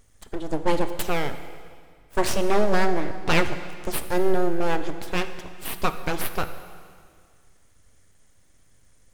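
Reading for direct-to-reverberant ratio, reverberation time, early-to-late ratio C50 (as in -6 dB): 9.0 dB, 2.0 s, 10.5 dB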